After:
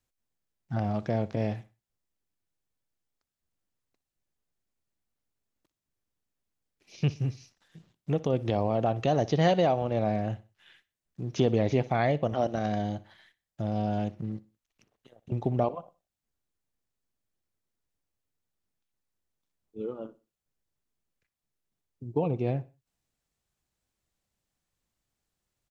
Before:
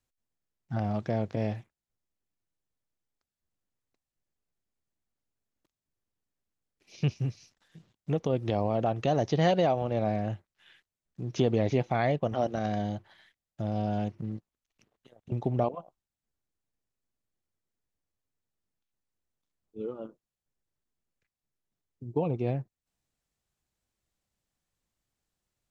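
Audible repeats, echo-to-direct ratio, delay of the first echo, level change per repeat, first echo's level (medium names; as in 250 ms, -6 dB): 2, -19.0 dB, 61 ms, -9.5 dB, -19.5 dB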